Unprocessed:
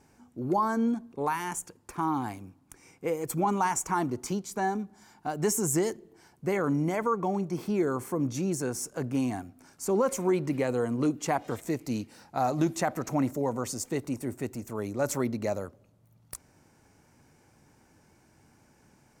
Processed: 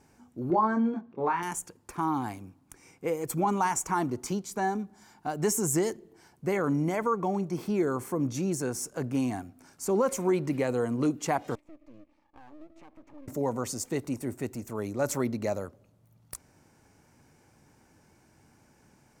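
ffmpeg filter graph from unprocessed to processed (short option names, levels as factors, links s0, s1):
-filter_complex "[0:a]asettb=1/sr,asplit=3[s0][s1][s2];[s0]atrim=end=0.504[s3];[s1]atrim=start=0.5:end=1.43,asetpts=PTS-STARTPTS,afade=t=in:d=0.004:c=qsin,afade=t=out:st=0.926:d=0.004:c=qsin,highpass=110,lowpass=2500,asplit=2[s4][s5];[s5]adelay=23,volume=0.631[s6];[s4][s6]amix=inputs=2:normalize=0,atrim=end_sample=41013[s7];[s2]atrim=start=1.426[s8];[s3][s7]acrossfade=d=0.004:c1=hsin:c2=qsin[s9];[s9][s8]acrossfade=d=0.004:c1=qsin:c2=hsin,asettb=1/sr,asplit=3[s10][s11][s12];[s10]atrim=end=11.554[s13];[s11]atrim=start=11.55:end=13.28,asetpts=PTS-STARTPTS,afade=t=in:d=0.004:c=qsin,afade=t=out:st=1.726:d=0.004:c=qsin,asplit=3[s14][s15][s16];[s14]bandpass=f=300:t=q:w=8,volume=1[s17];[s15]bandpass=f=870:t=q:w=8,volume=0.501[s18];[s16]bandpass=f=2240:t=q:w=8,volume=0.355[s19];[s17][s18][s19]amix=inputs=3:normalize=0,acompressor=threshold=0.00501:ratio=3:attack=3.2:release=140:knee=1:detection=peak,aeval=exprs='max(val(0),0)':c=same[s20];[s12]atrim=start=13.276[s21];[s13][s20]acrossfade=d=0.004:c1=hsin:c2=qsin[s22];[s22][s21]acrossfade=d=0.004:c1=qsin:c2=hsin"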